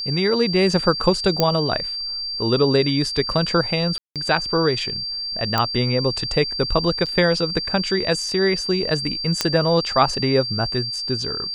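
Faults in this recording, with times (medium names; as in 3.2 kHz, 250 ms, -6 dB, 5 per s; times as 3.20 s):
whine 4.7 kHz -25 dBFS
1.40 s: pop -3 dBFS
3.98–4.16 s: dropout 177 ms
5.58 s: pop -5 dBFS
7.06–7.07 s: dropout 6.2 ms
9.41 s: pop -3 dBFS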